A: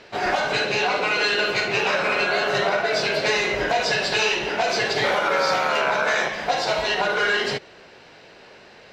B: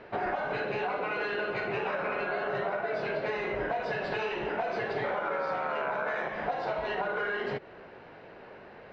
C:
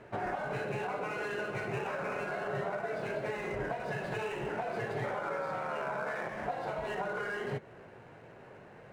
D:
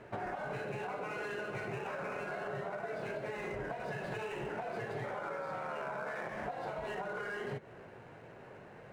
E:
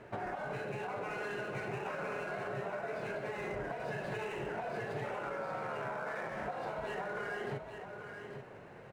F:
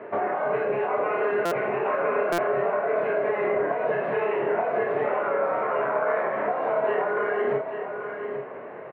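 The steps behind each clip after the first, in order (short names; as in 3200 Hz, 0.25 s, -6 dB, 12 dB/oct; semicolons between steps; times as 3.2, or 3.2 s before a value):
LPF 1600 Hz 12 dB/oct; compressor 4:1, threshold -30 dBFS, peak gain reduction 11 dB
median filter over 9 samples; bell 120 Hz +9.5 dB 1.1 oct; flange 0.31 Hz, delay 2.9 ms, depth 6 ms, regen -76%
compressor, threshold -36 dBFS, peak gain reduction 6.5 dB
echo 0.836 s -8 dB
speaker cabinet 210–2600 Hz, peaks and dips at 260 Hz +5 dB, 430 Hz +8 dB, 630 Hz +9 dB, 1100 Hz +9 dB, 2000 Hz +4 dB; doubler 29 ms -4.5 dB; stuck buffer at 1.45/2.32, samples 256, times 10; gain +6.5 dB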